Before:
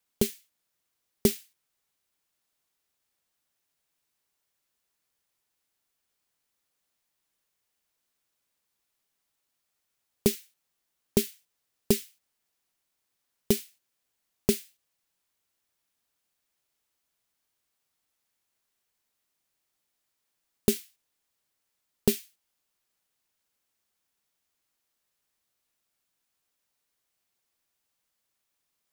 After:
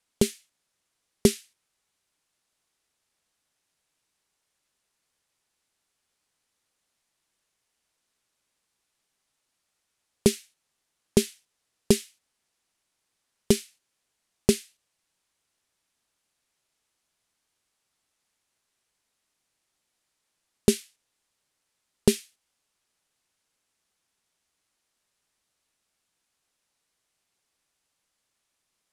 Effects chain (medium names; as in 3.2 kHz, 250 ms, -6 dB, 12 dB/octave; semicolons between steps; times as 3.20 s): low-pass 11 kHz 24 dB/octave; trim +4 dB